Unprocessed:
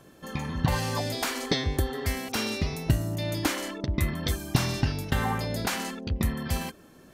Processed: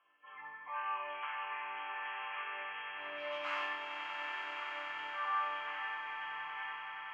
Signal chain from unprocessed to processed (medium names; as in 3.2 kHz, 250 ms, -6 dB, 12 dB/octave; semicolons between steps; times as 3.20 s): knee-point frequency compression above 2 kHz 4:1; spectral gate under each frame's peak -20 dB strong; dynamic bell 1.8 kHz, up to +7 dB, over -44 dBFS, Q 1.1; 2.97–3.65 s: waveshaping leveller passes 5; peak limiter -20 dBFS, peak gain reduction 11 dB; ladder band-pass 1.3 kHz, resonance 55%; chord resonator G2 minor, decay 0.8 s; echo with a slow build-up 94 ms, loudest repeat 8, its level -9.5 dB; trim +16 dB